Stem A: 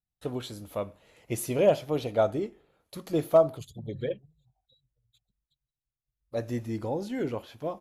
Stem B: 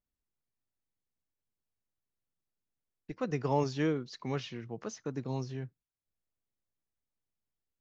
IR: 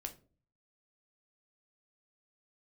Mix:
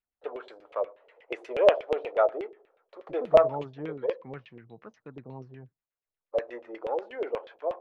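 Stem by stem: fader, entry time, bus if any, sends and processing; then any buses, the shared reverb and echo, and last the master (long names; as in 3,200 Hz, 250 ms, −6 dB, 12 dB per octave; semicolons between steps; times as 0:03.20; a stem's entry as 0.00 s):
−2.0 dB, 0.00 s, send −5.5 dB, gain on one half-wave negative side −3 dB; elliptic band-pass filter 430–9,800 Hz, stop band 40 dB
−8.5 dB, 0.00 s, no send, no processing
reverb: on, RT60 0.40 s, pre-delay 8 ms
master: auto-filter low-pass saw down 8.3 Hz 470–2,800 Hz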